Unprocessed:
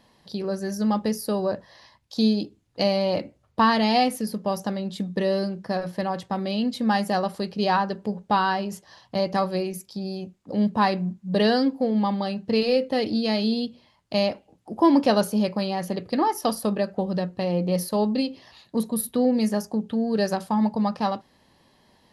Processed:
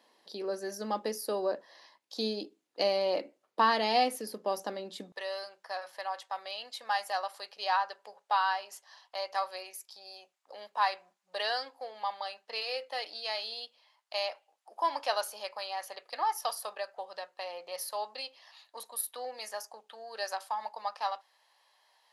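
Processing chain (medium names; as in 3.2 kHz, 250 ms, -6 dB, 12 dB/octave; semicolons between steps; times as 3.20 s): high-pass 310 Hz 24 dB/octave, from 5.12 s 710 Hz; trim -5 dB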